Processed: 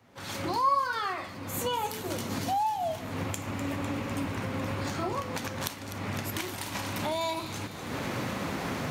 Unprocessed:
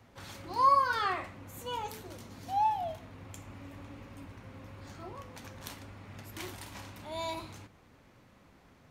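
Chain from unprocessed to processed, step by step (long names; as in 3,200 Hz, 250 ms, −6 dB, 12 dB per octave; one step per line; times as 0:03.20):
camcorder AGC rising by 37 dB per second
high-pass filter 110 Hz 12 dB per octave
on a send: delay with a high-pass on its return 251 ms, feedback 74%, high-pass 3,100 Hz, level −11 dB
on the sum: level −1.5 dB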